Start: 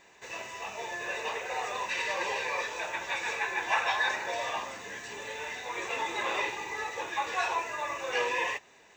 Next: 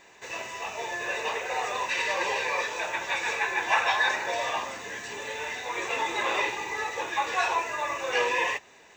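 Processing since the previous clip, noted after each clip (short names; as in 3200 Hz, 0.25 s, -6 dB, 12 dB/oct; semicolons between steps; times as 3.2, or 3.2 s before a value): notches 50/100/150/200 Hz; gain +4 dB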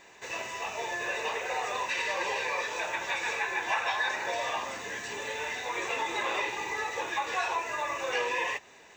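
compressor 2:1, threshold -30 dBFS, peak gain reduction 6.5 dB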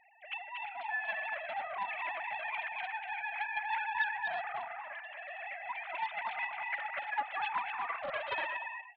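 sine-wave speech; tapped delay 0.238/0.344/0.355 s -5/-17.5/-18 dB; Doppler distortion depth 0.25 ms; gain -6.5 dB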